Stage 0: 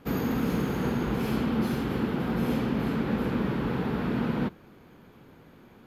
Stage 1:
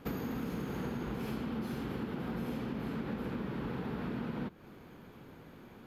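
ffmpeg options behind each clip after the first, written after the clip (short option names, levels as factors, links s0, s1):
-af "acompressor=threshold=0.0178:ratio=6"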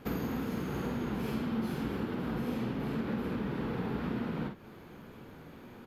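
-filter_complex "[0:a]flanger=delay=8.6:depth=5.7:regen=-50:speed=1.9:shape=sinusoidal,asplit=2[s0][s1];[s1]adelay=49,volume=0.501[s2];[s0][s2]amix=inputs=2:normalize=0,volume=2"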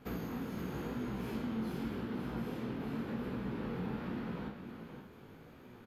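-filter_complex "[0:a]flanger=delay=15.5:depth=7.7:speed=0.89,asplit=2[s0][s1];[s1]aecho=0:1:521:0.398[s2];[s0][s2]amix=inputs=2:normalize=0,volume=0.75"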